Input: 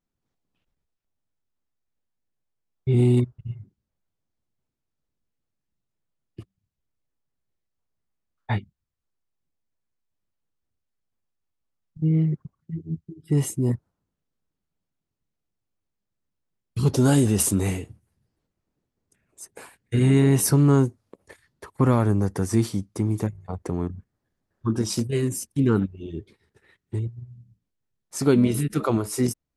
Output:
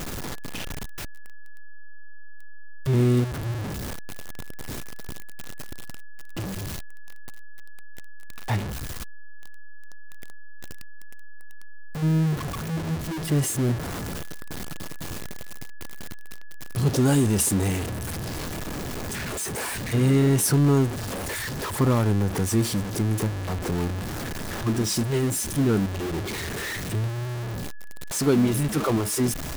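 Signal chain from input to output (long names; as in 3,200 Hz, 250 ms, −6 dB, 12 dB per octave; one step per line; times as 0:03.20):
converter with a step at zero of −21.5 dBFS
steady tone 1,700 Hz −46 dBFS
level −3.5 dB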